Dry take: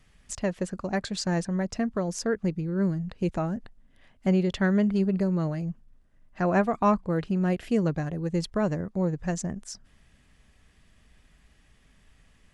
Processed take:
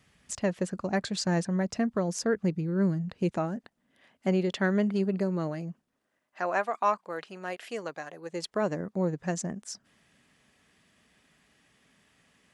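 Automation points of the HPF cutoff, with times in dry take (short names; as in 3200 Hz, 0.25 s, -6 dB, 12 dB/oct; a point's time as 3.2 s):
3.12 s 99 Hz
3.52 s 220 Hz
5.67 s 220 Hz
6.57 s 680 Hz
8.16 s 680 Hz
8.86 s 180 Hz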